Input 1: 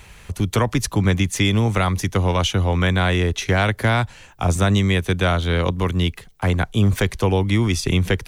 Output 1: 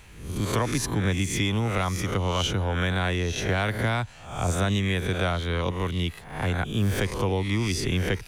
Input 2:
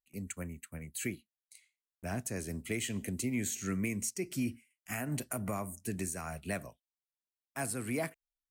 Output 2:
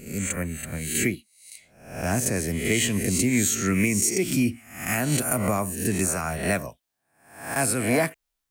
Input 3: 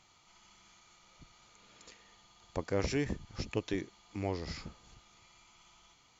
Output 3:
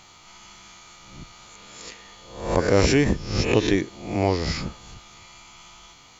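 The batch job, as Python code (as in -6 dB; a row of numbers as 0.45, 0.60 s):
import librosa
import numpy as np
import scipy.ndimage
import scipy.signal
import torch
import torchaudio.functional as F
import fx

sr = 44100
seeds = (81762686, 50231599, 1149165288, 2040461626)

y = fx.spec_swells(x, sr, rise_s=0.6)
y = y * 10.0 ** (-26 / 20.0) / np.sqrt(np.mean(np.square(y)))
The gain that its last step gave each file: -8.0, +10.5, +13.0 dB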